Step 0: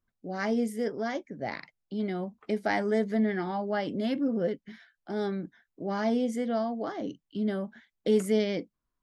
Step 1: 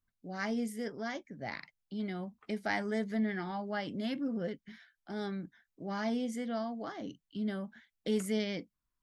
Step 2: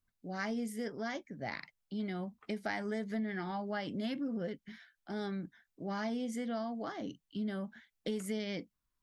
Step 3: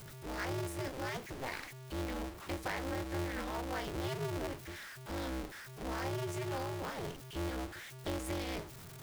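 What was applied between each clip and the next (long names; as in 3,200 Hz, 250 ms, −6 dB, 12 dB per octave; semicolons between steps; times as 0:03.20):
parametric band 450 Hz −7.5 dB 1.9 octaves; level −2 dB
downward compressor, threshold −34 dBFS, peak gain reduction 8 dB; level +1 dB
converter with a step at zero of −40.5 dBFS; ring modulator with a square carrier 130 Hz; level −3 dB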